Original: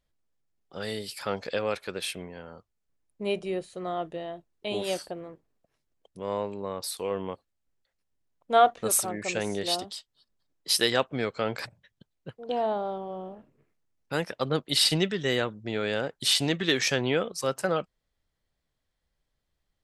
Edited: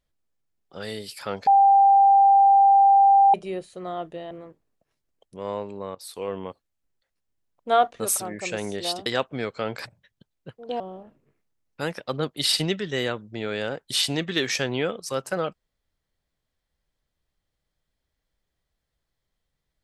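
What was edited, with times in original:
1.47–3.34 s: bleep 791 Hz -12 dBFS
4.31–5.14 s: delete
6.78–7.06 s: fade in, from -17 dB
9.89–10.86 s: delete
12.60–13.12 s: delete

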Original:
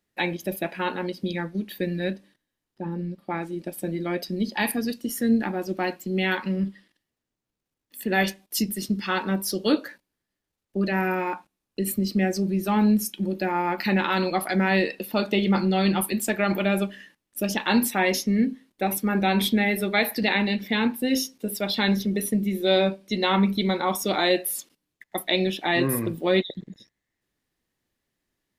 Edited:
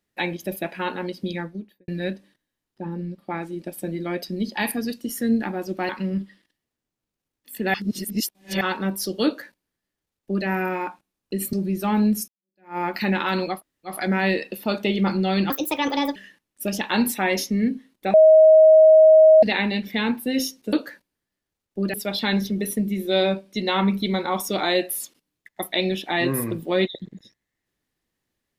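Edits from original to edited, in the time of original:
1.33–1.88 s: studio fade out
5.89–6.35 s: delete
8.20–9.07 s: reverse
9.71–10.92 s: copy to 21.49 s
11.99–12.37 s: delete
13.12–13.62 s: fade in exponential
14.39 s: insert room tone 0.36 s, crossfade 0.16 s
15.98–16.92 s: speed 143%
18.90–20.19 s: bleep 631 Hz -8 dBFS

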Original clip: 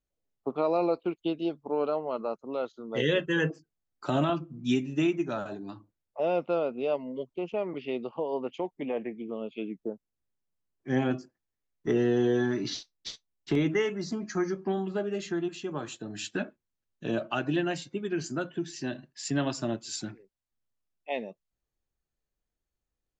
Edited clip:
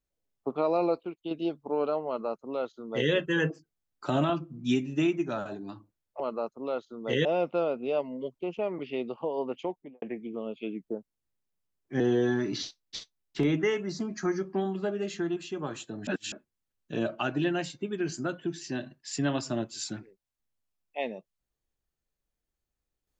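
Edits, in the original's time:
1.05–1.31 s: gain -6.5 dB
2.07–3.12 s: copy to 6.20 s
8.58–8.97 s: studio fade out
10.95–12.12 s: delete
16.19–16.44 s: reverse

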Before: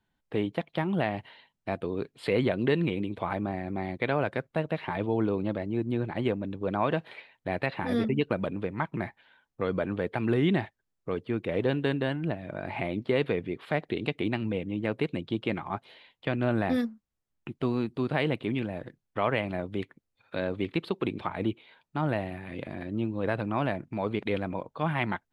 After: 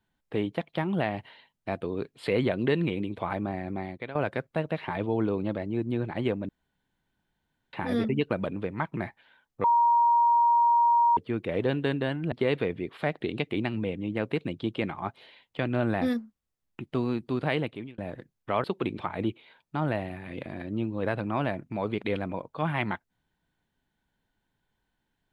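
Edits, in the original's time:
3.72–4.15 s: fade out, to -15 dB
6.49–7.73 s: room tone
9.64–11.17 s: bleep 943 Hz -18 dBFS
12.32–13.00 s: delete
18.23–18.66 s: fade out
19.32–20.85 s: delete

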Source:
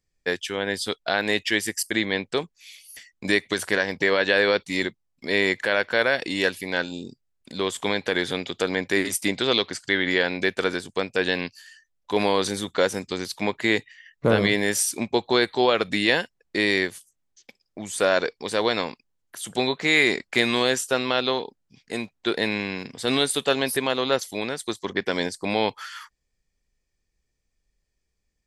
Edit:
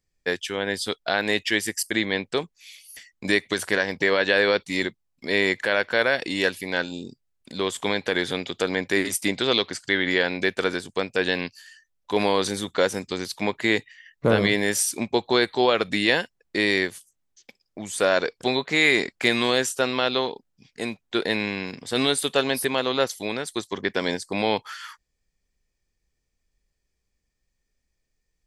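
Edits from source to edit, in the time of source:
18.41–19.53 s: delete

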